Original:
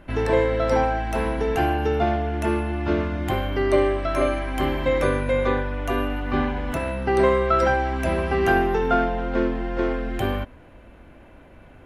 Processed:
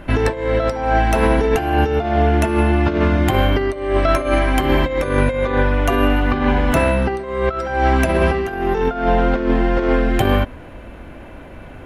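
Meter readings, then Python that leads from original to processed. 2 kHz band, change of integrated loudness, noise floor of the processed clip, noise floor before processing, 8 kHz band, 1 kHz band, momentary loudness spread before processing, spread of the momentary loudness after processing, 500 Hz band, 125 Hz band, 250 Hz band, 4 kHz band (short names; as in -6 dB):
+5.5 dB, +5.5 dB, -36 dBFS, -48 dBFS, +8.0 dB, +4.5 dB, 6 LU, 4 LU, +4.0 dB, +8.0 dB, +6.5 dB, +7.0 dB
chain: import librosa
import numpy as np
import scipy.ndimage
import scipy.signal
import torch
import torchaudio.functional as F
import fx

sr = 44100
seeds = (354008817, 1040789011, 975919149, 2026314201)

y = fx.over_compress(x, sr, threshold_db=-24.0, ratio=-0.5)
y = y * librosa.db_to_amplitude(8.5)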